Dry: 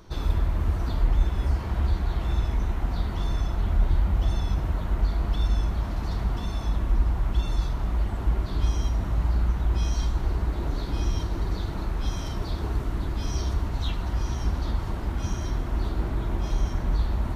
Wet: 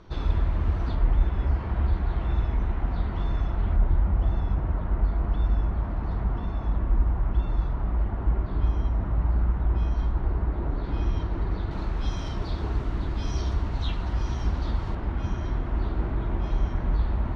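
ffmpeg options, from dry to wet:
-af "asetnsamples=n=441:p=0,asendcmd='0.95 lowpass f 2500;3.76 lowpass f 1700;10.84 lowpass f 2400;11.71 lowpass f 4700;14.95 lowpass f 2700',lowpass=3700"

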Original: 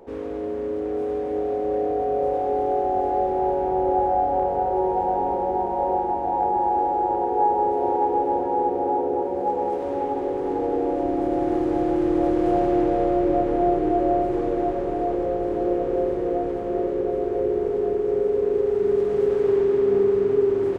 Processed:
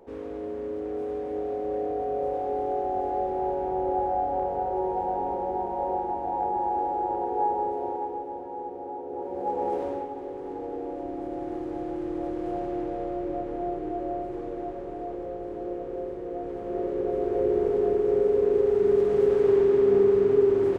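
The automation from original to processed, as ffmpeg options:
-af "volume=6.31,afade=t=out:st=7.49:d=0.78:silence=0.398107,afade=t=in:st=9.05:d=0.75:silence=0.266073,afade=t=out:st=9.8:d=0.28:silence=0.375837,afade=t=in:st=16.3:d=1.29:silence=0.316228"

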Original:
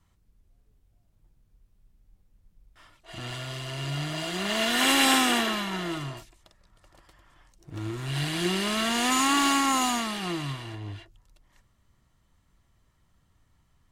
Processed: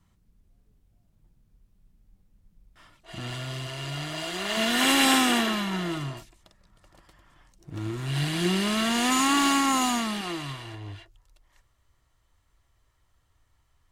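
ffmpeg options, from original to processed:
-af "asetnsamples=n=441:p=0,asendcmd='3.67 equalizer g -6;4.57 equalizer g 4.5;10.21 equalizer g -7;10.95 equalizer g -13.5',equalizer=f=190:t=o:w=1:g=6"

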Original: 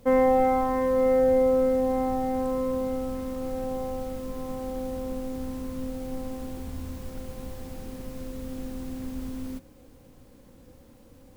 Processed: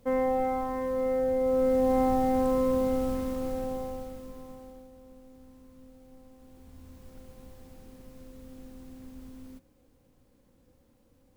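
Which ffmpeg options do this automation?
-af "volume=3.16,afade=t=in:st=1.39:d=0.61:silence=0.375837,afade=t=out:st=3.1:d=1.02:silence=0.334965,afade=t=out:st=4.12:d=0.77:silence=0.251189,afade=t=in:st=6.36:d=0.79:silence=0.398107"

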